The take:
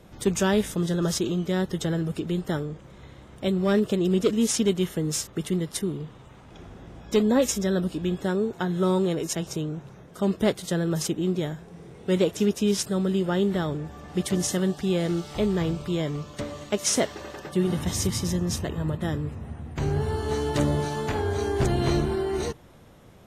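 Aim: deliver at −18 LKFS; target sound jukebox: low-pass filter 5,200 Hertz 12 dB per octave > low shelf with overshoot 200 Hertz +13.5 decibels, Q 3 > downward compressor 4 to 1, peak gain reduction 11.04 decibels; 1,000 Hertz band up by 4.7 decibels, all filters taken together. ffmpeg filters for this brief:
ffmpeg -i in.wav -af "lowpass=5200,lowshelf=frequency=200:width_type=q:width=3:gain=13.5,equalizer=frequency=1000:width_type=o:gain=7,acompressor=threshold=-15dB:ratio=4,volume=2.5dB" out.wav

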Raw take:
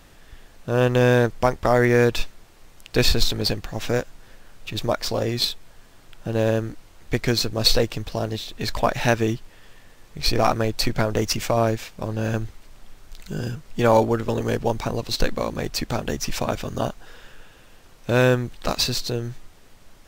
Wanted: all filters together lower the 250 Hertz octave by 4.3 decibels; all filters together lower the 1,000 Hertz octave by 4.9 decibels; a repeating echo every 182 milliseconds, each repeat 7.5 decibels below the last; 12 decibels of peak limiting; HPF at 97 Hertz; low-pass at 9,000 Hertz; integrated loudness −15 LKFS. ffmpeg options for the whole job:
ffmpeg -i in.wav -af "highpass=97,lowpass=9000,equalizer=frequency=250:width_type=o:gain=-5,equalizer=frequency=1000:width_type=o:gain=-6.5,alimiter=limit=-16.5dB:level=0:latency=1,aecho=1:1:182|364|546|728|910:0.422|0.177|0.0744|0.0312|0.0131,volume=13dB" out.wav

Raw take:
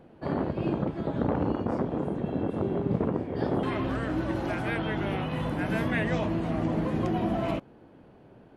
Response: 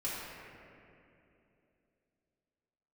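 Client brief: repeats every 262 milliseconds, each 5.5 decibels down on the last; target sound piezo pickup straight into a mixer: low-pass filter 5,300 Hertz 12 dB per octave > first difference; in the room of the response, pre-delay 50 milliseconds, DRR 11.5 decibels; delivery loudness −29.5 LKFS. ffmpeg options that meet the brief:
-filter_complex "[0:a]aecho=1:1:262|524|786|1048|1310|1572|1834:0.531|0.281|0.149|0.079|0.0419|0.0222|0.0118,asplit=2[link_01][link_02];[1:a]atrim=start_sample=2205,adelay=50[link_03];[link_02][link_03]afir=irnorm=-1:irlink=0,volume=-16dB[link_04];[link_01][link_04]amix=inputs=2:normalize=0,lowpass=5300,aderivative,volume=19dB"

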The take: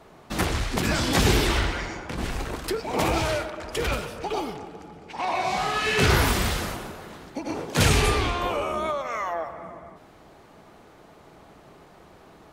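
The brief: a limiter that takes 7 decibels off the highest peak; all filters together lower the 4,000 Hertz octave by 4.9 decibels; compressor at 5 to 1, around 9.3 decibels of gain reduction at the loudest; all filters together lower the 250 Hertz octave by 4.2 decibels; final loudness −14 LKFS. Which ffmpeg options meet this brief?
ffmpeg -i in.wav -af "equalizer=frequency=250:width_type=o:gain=-6,equalizer=frequency=4000:width_type=o:gain=-6.5,acompressor=threshold=-27dB:ratio=5,volume=19.5dB,alimiter=limit=-3.5dB:level=0:latency=1" out.wav

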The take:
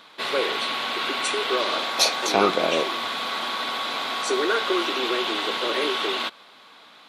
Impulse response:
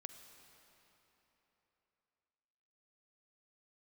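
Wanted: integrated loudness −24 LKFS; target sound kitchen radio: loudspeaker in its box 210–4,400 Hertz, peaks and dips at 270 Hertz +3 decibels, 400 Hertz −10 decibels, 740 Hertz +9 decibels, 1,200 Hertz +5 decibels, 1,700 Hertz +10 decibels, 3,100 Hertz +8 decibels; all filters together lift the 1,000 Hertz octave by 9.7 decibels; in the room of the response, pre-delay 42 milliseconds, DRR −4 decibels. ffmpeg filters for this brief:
-filter_complex "[0:a]equalizer=frequency=1000:width_type=o:gain=5,asplit=2[link_01][link_02];[1:a]atrim=start_sample=2205,adelay=42[link_03];[link_02][link_03]afir=irnorm=-1:irlink=0,volume=9dB[link_04];[link_01][link_04]amix=inputs=2:normalize=0,highpass=210,equalizer=frequency=270:width_type=q:width=4:gain=3,equalizer=frequency=400:width_type=q:width=4:gain=-10,equalizer=frequency=740:width_type=q:width=4:gain=9,equalizer=frequency=1200:width_type=q:width=4:gain=5,equalizer=frequency=1700:width_type=q:width=4:gain=10,equalizer=frequency=3100:width_type=q:width=4:gain=8,lowpass=frequency=4400:width=0.5412,lowpass=frequency=4400:width=1.3066,volume=-12dB"

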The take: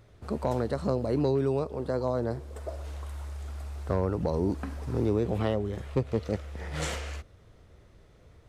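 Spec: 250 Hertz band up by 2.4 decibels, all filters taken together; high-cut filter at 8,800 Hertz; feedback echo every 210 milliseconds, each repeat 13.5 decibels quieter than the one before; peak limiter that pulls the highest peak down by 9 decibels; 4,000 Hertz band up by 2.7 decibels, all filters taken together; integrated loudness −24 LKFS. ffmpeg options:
ffmpeg -i in.wav -af "lowpass=8800,equalizer=frequency=250:width_type=o:gain=3,equalizer=frequency=4000:width_type=o:gain=3.5,alimiter=limit=-23dB:level=0:latency=1,aecho=1:1:210|420:0.211|0.0444,volume=10dB" out.wav

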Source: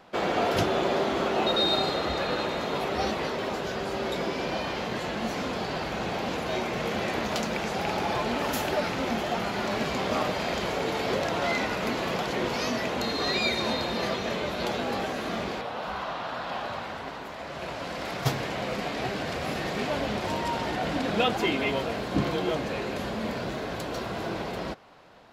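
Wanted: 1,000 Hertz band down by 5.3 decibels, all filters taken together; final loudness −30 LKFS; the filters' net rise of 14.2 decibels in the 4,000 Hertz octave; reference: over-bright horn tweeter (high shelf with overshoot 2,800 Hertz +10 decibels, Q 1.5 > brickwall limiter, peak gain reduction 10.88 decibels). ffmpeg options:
ffmpeg -i in.wav -af "equalizer=frequency=1000:width_type=o:gain=-6.5,highshelf=frequency=2800:width_type=q:width=1.5:gain=10,equalizer=frequency=4000:width_type=o:gain=4,volume=-5.5dB,alimiter=limit=-20dB:level=0:latency=1" out.wav

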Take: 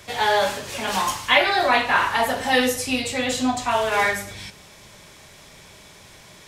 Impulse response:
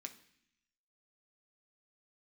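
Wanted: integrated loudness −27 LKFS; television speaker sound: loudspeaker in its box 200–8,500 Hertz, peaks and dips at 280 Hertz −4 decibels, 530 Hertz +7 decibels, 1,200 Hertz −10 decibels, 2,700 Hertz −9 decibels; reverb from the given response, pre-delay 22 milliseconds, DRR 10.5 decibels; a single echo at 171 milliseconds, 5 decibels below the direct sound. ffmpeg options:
-filter_complex "[0:a]aecho=1:1:171:0.562,asplit=2[link_01][link_02];[1:a]atrim=start_sample=2205,adelay=22[link_03];[link_02][link_03]afir=irnorm=-1:irlink=0,volume=-6dB[link_04];[link_01][link_04]amix=inputs=2:normalize=0,highpass=frequency=200:width=0.5412,highpass=frequency=200:width=1.3066,equalizer=frequency=280:width_type=q:width=4:gain=-4,equalizer=frequency=530:width_type=q:width=4:gain=7,equalizer=frequency=1200:width_type=q:width=4:gain=-10,equalizer=frequency=2700:width_type=q:width=4:gain=-9,lowpass=frequency=8500:width=0.5412,lowpass=frequency=8500:width=1.3066,volume=-7dB"

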